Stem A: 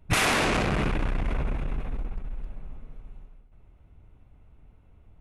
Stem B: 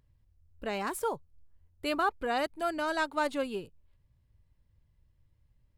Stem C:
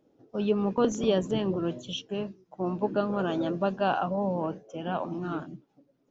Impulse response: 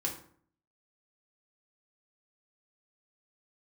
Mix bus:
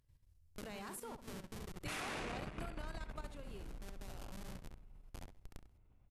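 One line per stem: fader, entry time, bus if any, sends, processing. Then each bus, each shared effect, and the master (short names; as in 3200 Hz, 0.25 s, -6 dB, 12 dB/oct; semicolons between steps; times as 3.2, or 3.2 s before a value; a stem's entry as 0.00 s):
-8.5 dB, 1.75 s, no bus, no send, no echo send, dry
0.0 dB, 0.00 s, bus A, no send, echo send -20.5 dB, dry
-7.0 dB, 0.20 s, bus A, no send, echo send -11.5 dB, bell 250 Hz +5 dB 1.6 oct; Schmitt trigger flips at -21 dBFS; auto duck -10 dB, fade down 0.80 s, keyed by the second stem
bus A: 0.0 dB, high shelf 3600 Hz +9 dB; compressor 20:1, threshold -37 dBFS, peak gain reduction 15 dB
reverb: off
echo: feedback echo 67 ms, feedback 20%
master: level quantiser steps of 11 dB; brick-wall FIR low-pass 14000 Hz; compressor 2.5:1, threshold -45 dBFS, peak gain reduction 10 dB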